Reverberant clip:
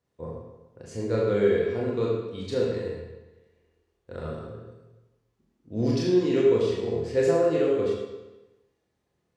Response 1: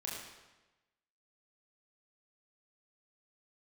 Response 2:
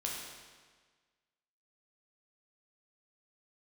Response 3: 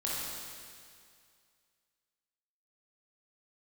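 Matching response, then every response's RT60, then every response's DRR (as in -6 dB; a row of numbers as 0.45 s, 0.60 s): 1; 1.1 s, 1.5 s, 2.2 s; -4.5 dB, -3.0 dB, -6.5 dB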